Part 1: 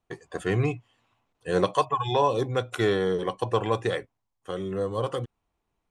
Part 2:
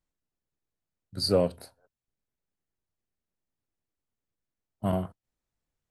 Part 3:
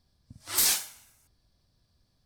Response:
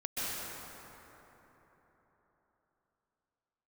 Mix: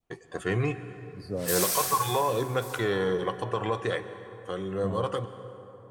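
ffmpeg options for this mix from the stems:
-filter_complex "[0:a]bandreject=f=377.4:t=h:w=4,bandreject=f=754.8:t=h:w=4,bandreject=f=1132.2:t=h:w=4,bandreject=f=1509.6:t=h:w=4,bandreject=f=1887:t=h:w=4,bandreject=f=2264.4:t=h:w=4,bandreject=f=2641.8:t=h:w=4,bandreject=f=3019.2:t=h:w=4,bandreject=f=3396.6:t=h:w=4,bandreject=f=3774:t=h:w=4,bandreject=f=4151.4:t=h:w=4,bandreject=f=4528.8:t=h:w=4,bandreject=f=4906.2:t=h:w=4,bandreject=f=5283.6:t=h:w=4,bandreject=f=5661:t=h:w=4,bandreject=f=6038.4:t=h:w=4,bandreject=f=6415.8:t=h:w=4,bandreject=f=6793.2:t=h:w=4,bandreject=f=7170.6:t=h:w=4,bandreject=f=7548:t=h:w=4,bandreject=f=7925.4:t=h:w=4,bandreject=f=8302.8:t=h:w=4,bandreject=f=8680.2:t=h:w=4,bandreject=f=9057.6:t=h:w=4,bandreject=f=9435:t=h:w=4,bandreject=f=9812.4:t=h:w=4,bandreject=f=10189.8:t=h:w=4,bandreject=f=10567.2:t=h:w=4,bandreject=f=10944.6:t=h:w=4,bandreject=f=11322:t=h:w=4,bandreject=f=11699.4:t=h:w=4,bandreject=f=12076.8:t=h:w=4,alimiter=limit=0.15:level=0:latency=1:release=55,volume=0.75,asplit=2[s0][s1];[s1]volume=0.141[s2];[1:a]tiltshelf=f=970:g=9.5,volume=0.158,asplit=2[s3][s4];[2:a]adynamicequalizer=threshold=0.0158:dfrequency=6200:dqfactor=0.7:tfrequency=6200:tqfactor=0.7:attack=5:release=100:ratio=0.375:range=3:mode=boostabove:tftype=highshelf,adelay=900,volume=0.501,asplit=3[s5][s6][s7];[s6]volume=0.562[s8];[s7]volume=0.0794[s9];[s4]apad=whole_len=139343[s10];[s5][s10]sidechaincompress=threshold=0.00562:ratio=8:attack=16:release=302[s11];[3:a]atrim=start_sample=2205[s12];[s2][s8]amix=inputs=2:normalize=0[s13];[s13][s12]afir=irnorm=-1:irlink=0[s14];[s9]aecho=0:1:1139:1[s15];[s0][s3][s11][s14][s15]amix=inputs=5:normalize=0,adynamicequalizer=threshold=0.01:dfrequency=1400:dqfactor=0.92:tfrequency=1400:tqfactor=0.92:attack=5:release=100:ratio=0.375:range=2:mode=boostabove:tftype=bell"

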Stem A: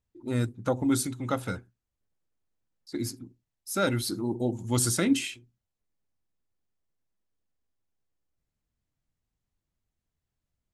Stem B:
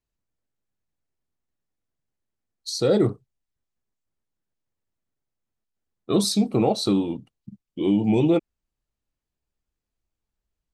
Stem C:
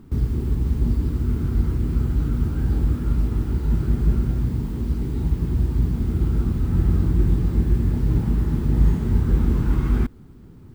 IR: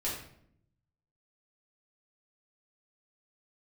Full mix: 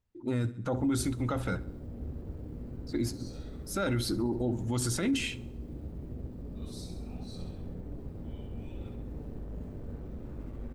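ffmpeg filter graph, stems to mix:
-filter_complex "[0:a]highshelf=f=5600:g=-10.5,volume=1.33,asplit=2[s0][s1];[s1]volume=0.0708[s2];[1:a]highpass=1400,adelay=450,volume=0.237,asplit=3[s3][s4][s5];[s4]volume=0.106[s6];[s5]volume=0.237[s7];[2:a]lowshelf=f=210:g=4.5,asoftclip=type=hard:threshold=0.0944,adelay=600,volume=0.266,asplit=3[s8][s9][s10];[s9]volume=0.178[s11];[s10]volume=0.251[s12];[s3][s8]amix=inputs=2:normalize=0,asuperpass=centerf=410:order=4:qfactor=0.85,alimiter=level_in=9.44:limit=0.0631:level=0:latency=1,volume=0.106,volume=1[s13];[3:a]atrim=start_sample=2205[s14];[s6][s11]amix=inputs=2:normalize=0[s15];[s15][s14]afir=irnorm=-1:irlink=0[s16];[s2][s7][s12]amix=inputs=3:normalize=0,aecho=0:1:67|134|201|268|335|402|469|536:1|0.52|0.27|0.141|0.0731|0.038|0.0198|0.0103[s17];[s0][s13][s16][s17]amix=inputs=4:normalize=0,alimiter=limit=0.0794:level=0:latency=1:release=11"

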